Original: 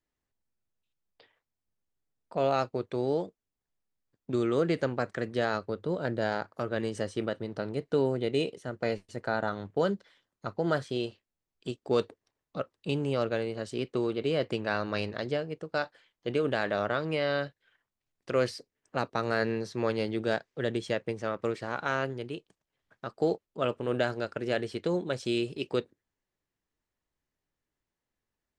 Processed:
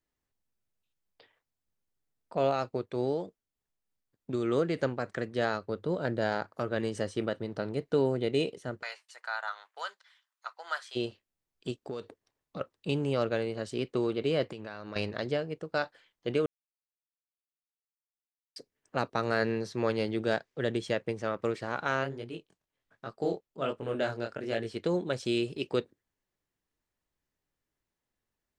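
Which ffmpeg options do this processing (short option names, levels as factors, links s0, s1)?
-filter_complex "[0:a]asplit=3[s0][s1][s2];[s0]afade=t=out:st=2.5:d=0.02[s3];[s1]tremolo=f=3.3:d=0.35,afade=t=in:st=2.5:d=0.02,afade=t=out:st=5.81:d=0.02[s4];[s2]afade=t=in:st=5.81:d=0.02[s5];[s3][s4][s5]amix=inputs=3:normalize=0,asplit=3[s6][s7][s8];[s6]afade=t=out:st=8.81:d=0.02[s9];[s7]highpass=f=940:w=0.5412,highpass=f=940:w=1.3066,afade=t=in:st=8.81:d=0.02,afade=t=out:st=10.95:d=0.02[s10];[s8]afade=t=in:st=10.95:d=0.02[s11];[s9][s10][s11]amix=inputs=3:normalize=0,asettb=1/sr,asplit=3[s12][s13][s14];[s12]atrim=end=11.884[s15];[s13]atrim=start=11.88:end=12.61,asetpts=PTS-STARTPTS,afade=t=in:d=0.004:c=qsin,afade=t=out:st=0.726:d=0.004:c=qsin,acompressor=threshold=0.0224:ratio=10:attack=3.2:release=140:knee=1:detection=peak[s16];[s14]atrim=start=12.606[s17];[s15][s16]acrossfade=d=0.004:c1=hsin:c2=qsin[s18];[s18][s17]acrossfade=d=0.004:c1=qsin:c2=hsin,asettb=1/sr,asplit=3[s19][s20][s21];[s19]atrim=end=14.434[s22];[s20]atrim=start=14.43:end=14.96,asetpts=PTS-STARTPTS,afade=t=in:d=0.004:c=qsin,afade=t=out:st=0.526:d=0.004:c=qsin,acompressor=threshold=0.0141:ratio=6:attack=3.2:release=140:knee=1:detection=peak[s23];[s21]atrim=start=14.956[s24];[s22][s23]acrossfade=d=0.004:c1=hsin:c2=qsin[s25];[s25][s24]acrossfade=d=0.004:c1=qsin:c2=hsin,asplit=3[s26][s27][s28];[s26]afade=t=out:st=22.03:d=0.02[s29];[s27]flanger=delay=17.5:depth=7.9:speed=1.3,afade=t=in:st=22.03:d=0.02,afade=t=out:st=24.75:d=0.02[s30];[s28]afade=t=in:st=24.75:d=0.02[s31];[s29][s30][s31]amix=inputs=3:normalize=0,asplit=3[s32][s33][s34];[s32]atrim=end=16.46,asetpts=PTS-STARTPTS,afade=t=out:st=16.456:d=0.004:c=hsin[s35];[s33]atrim=start=16.46:end=18.56,asetpts=PTS-STARTPTS,volume=0[s36];[s34]atrim=start=18.56,asetpts=PTS-STARTPTS,afade=t=in:d=0.004:c=hsin[s37];[s35][s36][s37]concat=n=3:v=0:a=1"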